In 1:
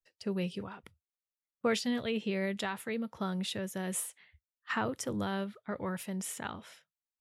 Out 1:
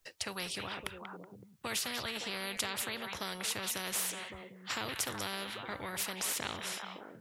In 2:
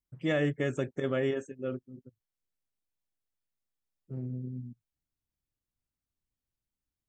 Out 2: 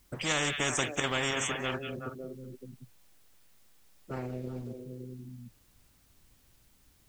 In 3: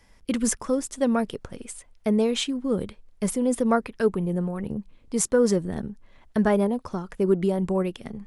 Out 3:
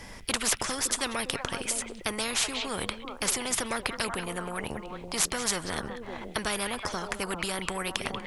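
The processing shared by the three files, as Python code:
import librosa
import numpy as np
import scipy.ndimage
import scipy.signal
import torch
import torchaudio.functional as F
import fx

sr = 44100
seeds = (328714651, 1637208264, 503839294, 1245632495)

y = fx.echo_stepped(x, sr, ms=187, hz=2800.0, octaves=-1.4, feedback_pct=70, wet_db=-10.5)
y = fx.spectral_comp(y, sr, ratio=4.0)
y = y * 10.0 ** (2.0 / 20.0)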